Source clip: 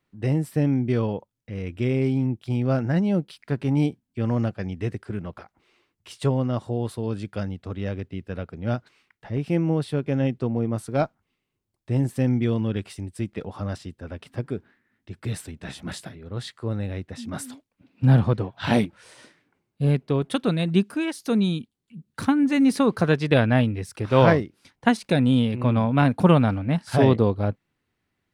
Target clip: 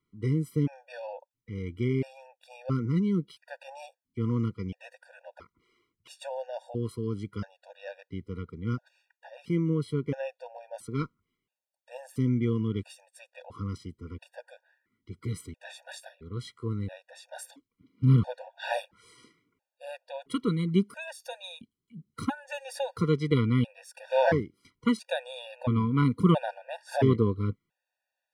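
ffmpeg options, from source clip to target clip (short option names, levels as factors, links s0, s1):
-af "afftfilt=real='re*gt(sin(2*PI*0.74*pts/sr)*(1-2*mod(floor(b*sr/1024/480),2)),0)':imag='im*gt(sin(2*PI*0.74*pts/sr)*(1-2*mod(floor(b*sr/1024/480),2)),0)':win_size=1024:overlap=0.75,volume=0.631"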